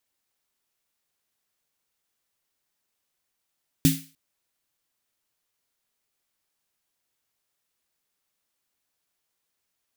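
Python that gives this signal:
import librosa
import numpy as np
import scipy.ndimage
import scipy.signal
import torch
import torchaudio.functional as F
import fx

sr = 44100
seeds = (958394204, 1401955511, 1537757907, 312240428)

y = fx.drum_snare(sr, seeds[0], length_s=0.3, hz=160.0, second_hz=270.0, noise_db=-6.5, noise_from_hz=2000.0, decay_s=0.3, noise_decay_s=0.38)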